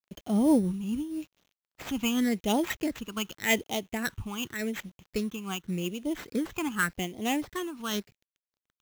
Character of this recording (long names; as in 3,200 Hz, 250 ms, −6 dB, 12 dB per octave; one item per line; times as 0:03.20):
a quantiser's noise floor 10 bits, dither none
phaser sweep stages 8, 0.87 Hz, lowest notch 550–1,700 Hz
aliases and images of a low sample rate 9,600 Hz, jitter 0%
amplitude modulation by smooth noise